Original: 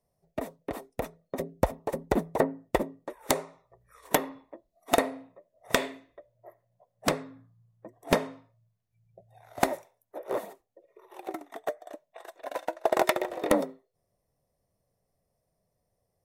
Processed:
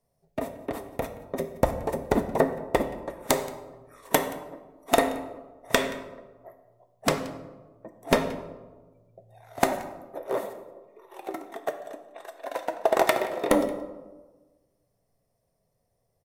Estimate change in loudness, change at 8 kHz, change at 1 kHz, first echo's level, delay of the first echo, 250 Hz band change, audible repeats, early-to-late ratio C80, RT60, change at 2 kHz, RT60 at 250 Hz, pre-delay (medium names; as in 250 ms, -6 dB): +2.5 dB, +2.5 dB, +3.0 dB, -22.0 dB, 176 ms, +3.0 dB, 1, 12.0 dB, 1.3 s, +3.0 dB, 1.4 s, 4 ms